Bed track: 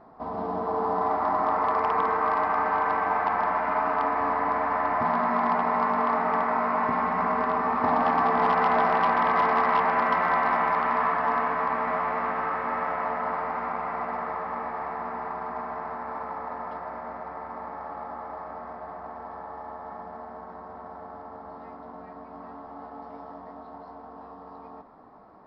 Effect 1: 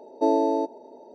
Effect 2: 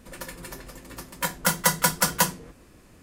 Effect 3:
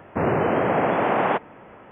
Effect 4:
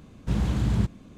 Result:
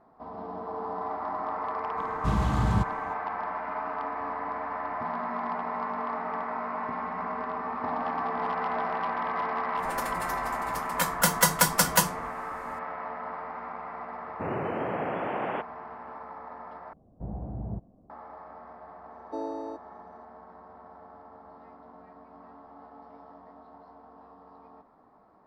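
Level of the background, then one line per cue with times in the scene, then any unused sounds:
bed track -8 dB
1.97 s: add 4 -1.5 dB
9.77 s: add 2 -0.5 dB
14.24 s: add 3 -10.5 dB
16.93 s: replace with 4 -1 dB + four-pole ladder low-pass 790 Hz, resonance 65%
19.11 s: add 1 -13.5 dB

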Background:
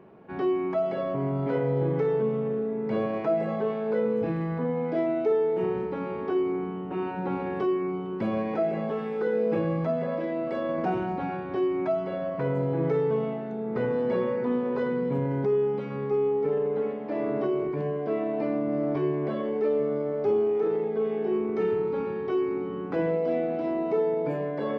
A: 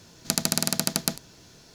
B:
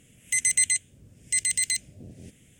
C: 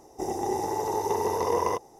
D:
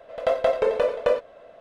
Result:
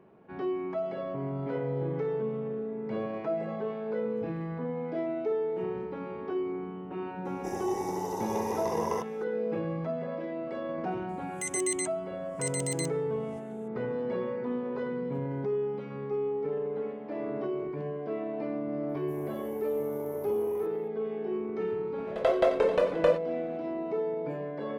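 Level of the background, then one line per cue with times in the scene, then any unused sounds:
background -6 dB
7.25 s: add C -6 dB
11.09 s: add B -10.5 dB
18.89 s: add C -14.5 dB + FFT filter 360 Hz 0 dB, 2.3 kHz -17 dB, 4.9 kHz -22 dB, 7.2 kHz -13 dB, 13 kHz +12 dB
21.98 s: add D -3 dB
not used: A

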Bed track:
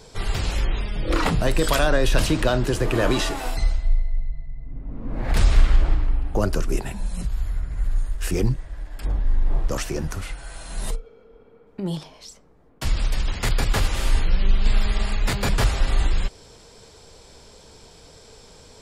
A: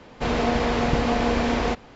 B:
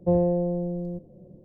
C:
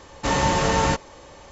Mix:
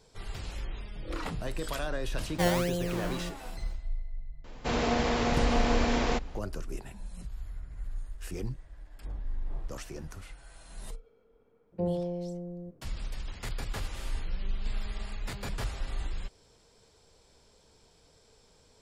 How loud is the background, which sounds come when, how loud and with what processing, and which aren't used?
bed track -14.5 dB
2.32 s: add B -6 dB + decimation with a swept rate 24× 1.7 Hz
4.44 s: add A -5.5 dB + treble shelf 6.6 kHz +11 dB
11.72 s: add B -9.5 dB
not used: C

